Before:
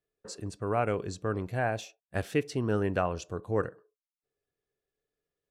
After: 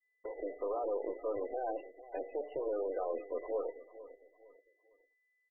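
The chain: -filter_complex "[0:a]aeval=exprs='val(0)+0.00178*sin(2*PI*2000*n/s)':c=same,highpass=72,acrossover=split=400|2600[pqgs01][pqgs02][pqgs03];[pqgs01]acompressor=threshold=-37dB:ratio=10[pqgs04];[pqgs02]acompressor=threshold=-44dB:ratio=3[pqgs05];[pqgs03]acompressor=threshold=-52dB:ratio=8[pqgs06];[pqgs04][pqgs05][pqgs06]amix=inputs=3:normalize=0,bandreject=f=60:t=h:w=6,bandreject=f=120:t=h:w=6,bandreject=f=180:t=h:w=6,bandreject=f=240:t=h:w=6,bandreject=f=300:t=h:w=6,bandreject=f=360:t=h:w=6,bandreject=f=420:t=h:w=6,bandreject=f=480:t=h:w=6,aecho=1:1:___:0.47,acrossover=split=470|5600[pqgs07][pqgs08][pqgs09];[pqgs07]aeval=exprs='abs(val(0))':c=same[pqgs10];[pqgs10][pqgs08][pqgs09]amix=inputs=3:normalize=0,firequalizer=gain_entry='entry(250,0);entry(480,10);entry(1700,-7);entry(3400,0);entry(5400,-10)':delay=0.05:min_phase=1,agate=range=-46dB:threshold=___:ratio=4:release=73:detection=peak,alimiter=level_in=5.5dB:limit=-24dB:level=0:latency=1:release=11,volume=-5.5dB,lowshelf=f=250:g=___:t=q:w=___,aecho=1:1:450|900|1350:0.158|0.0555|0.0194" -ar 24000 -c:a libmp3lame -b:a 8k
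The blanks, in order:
4, -53dB, -10, 3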